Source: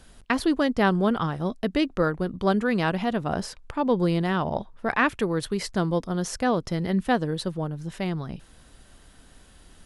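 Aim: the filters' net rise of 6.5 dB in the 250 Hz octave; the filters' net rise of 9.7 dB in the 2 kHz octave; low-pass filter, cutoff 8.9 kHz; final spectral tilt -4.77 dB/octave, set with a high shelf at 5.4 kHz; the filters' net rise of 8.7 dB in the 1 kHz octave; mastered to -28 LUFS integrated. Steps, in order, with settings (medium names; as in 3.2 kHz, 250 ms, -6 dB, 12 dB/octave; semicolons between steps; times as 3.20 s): low-pass 8.9 kHz; peaking EQ 250 Hz +8 dB; peaking EQ 1 kHz +8.5 dB; peaking EQ 2 kHz +8.5 dB; treble shelf 5.4 kHz +4.5 dB; trim -9 dB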